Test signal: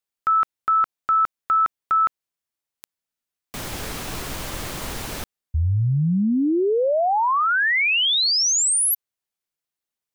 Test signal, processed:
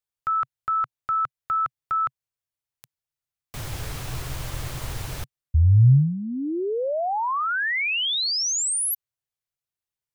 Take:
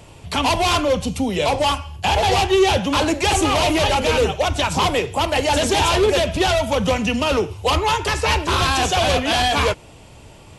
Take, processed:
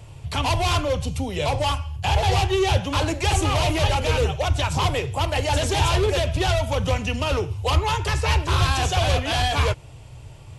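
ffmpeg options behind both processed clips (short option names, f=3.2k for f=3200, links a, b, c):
-af "lowshelf=f=160:t=q:w=3:g=6.5,volume=-5dB"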